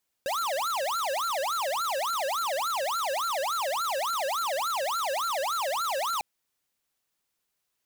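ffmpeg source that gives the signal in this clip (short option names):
-f lavfi -i "aevalsrc='0.0355*(2*lt(mod((954.5*t-425.5/(2*PI*3.5)*sin(2*PI*3.5*t)),1),0.5)-1)':d=5.95:s=44100"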